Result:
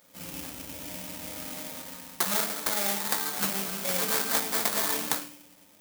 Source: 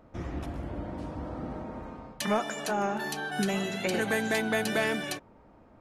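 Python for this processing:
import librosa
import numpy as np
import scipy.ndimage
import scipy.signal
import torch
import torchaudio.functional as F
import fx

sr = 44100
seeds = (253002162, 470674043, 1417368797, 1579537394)

y = fx.high_shelf_res(x, sr, hz=7700.0, db=13.5, q=3.0)
y = fx.rev_fdn(y, sr, rt60_s=0.65, lf_ratio=1.6, hf_ratio=0.45, size_ms=33.0, drr_db=-5.5)
y = fx.sample_hold(y, sr, seeds[0], rate_hz=2800.0, jitter_pct=20)
y = fx.riaa(y, sr, side='recording')
y = y * librosa.db_to_amplitude(-10.5)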